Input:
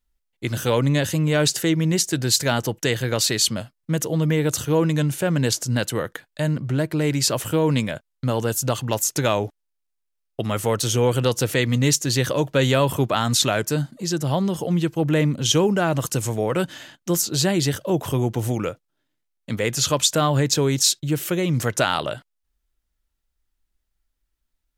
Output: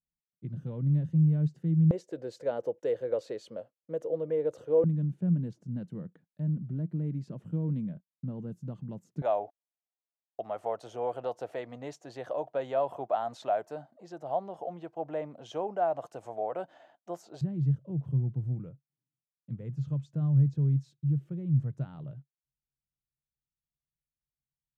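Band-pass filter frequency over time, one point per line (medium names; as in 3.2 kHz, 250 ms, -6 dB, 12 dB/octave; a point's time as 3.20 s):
band-pass filter, Q 5.7
160 Hz
from 1.91 s 510 Hz
from 4.84 s 180 Hz
from 9.22 s 700 Hz
from 17.41 s 140 Hz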